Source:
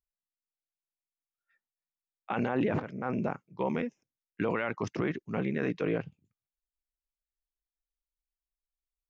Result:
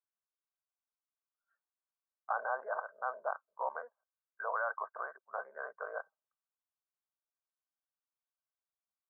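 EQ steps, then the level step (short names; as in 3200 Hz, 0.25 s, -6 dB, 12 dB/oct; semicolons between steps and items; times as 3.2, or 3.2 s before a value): elliptic high-pass 630 Hz, stop band 50 dB; rippled Chebyshev low-pass 1600 Hz, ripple 6 dB; air absorption 230 m; +6.5 dB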